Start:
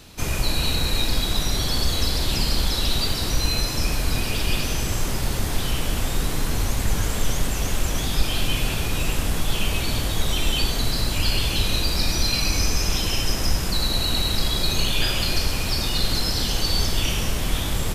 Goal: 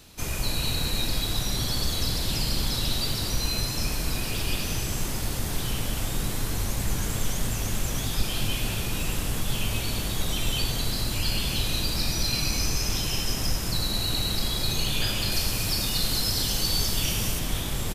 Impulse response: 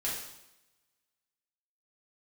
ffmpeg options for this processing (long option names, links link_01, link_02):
-filter_complex "[0:a]asetnsamples=nb_out_samples=441:pad=0,asendcmd='15.32 highshelf g 11.5;17.39 highshelf g 4',highshelf=frequency=6300:gain=5.5,asplit=5[link_01][link_02][link_03][link_04][link_05];[link_02]adelay=226,afreqshift=96,volume=-10dB[link_06];[link_03]adelay=452,afreqshift=192,volume=-18.6dB[link_07];[link_04]adelay=678,afreqshift=288,volume=-27.3dB[link_08];[link_05]adelay=904,afreqshift=384,volume=-35.9dB[link_09];[link_01][link_06][link_07][link_08][link_09]amix=inputs=5:normalize=0,volume=-6dB"